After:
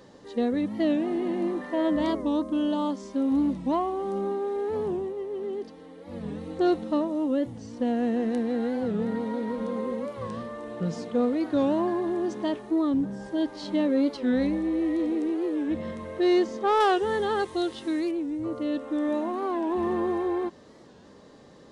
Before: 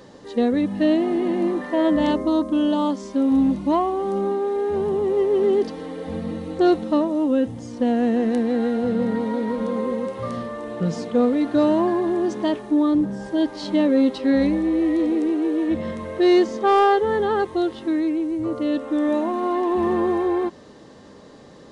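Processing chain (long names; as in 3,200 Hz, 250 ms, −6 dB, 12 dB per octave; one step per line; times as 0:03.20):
0:04.92–0:06.27: duck −8 dB, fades 0.22 s
0:16.81–0:18.12: high-shelf EQ 2,900 Hz +12 dB
wow of a warped record 45 rpm, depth 160 cents
level −6 dB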